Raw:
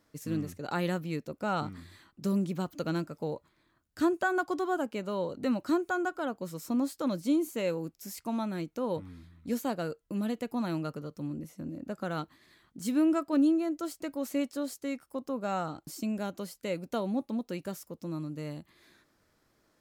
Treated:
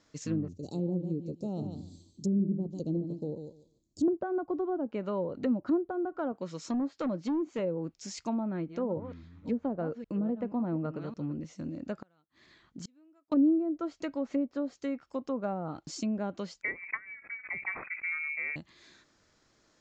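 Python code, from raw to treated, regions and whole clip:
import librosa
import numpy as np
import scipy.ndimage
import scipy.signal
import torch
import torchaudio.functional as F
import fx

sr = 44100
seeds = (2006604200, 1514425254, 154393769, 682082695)

y = fx.chain(x, sr, fx.cheby1_bandstop(low_hz=360.0, high_hz=6900.0, order=2),
    fx.echo_feedback(ms=146, feedback_pct=17, wet_db=-7.5), at=(0.48, 4.08))
y = fx.chain(y, sr, fx.highpass(hz=140.0, slope=6),
    fx.clip_hard(threshold_db=-28.0), at=(6.32, 7.59))
y = fx.chain(y, sr, fx.reverse_delay(ms=274, wet_db=-12.5),
    fx.high_shelf(hz=3300.0, db=-11.0), at=(8.4, 11.32))
y = fx.chain(y, sr, fx.lowpass(hz=2600.0, slope=6),
    fx.gate_flip(shuts_db=-33.0, range_db=-37), at=(12.01, 13.32))
y = fx.chain(y, sr, fx.freq_invert(carrier_hz=2500),
    fx.low_shelf(hz=80.0, db=-10.5),
    fx.sustainer(db_per_s=89.0), at=(16.62, 18.56))
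y = fx.env_lowpass_down(y, sr, base_hz=500.0, full_db=-27.0)
y = scipy.signal.sosfilt(scipy.signal.ellip(4, 1.0, 40, 7100.0, 'lowpass', fs=sr, output='sos'), y)
y = fx.high_shelf(y, sr, hz=4500.0, db=9.5)
y = y * librosa.db_to_amplitude(2.0)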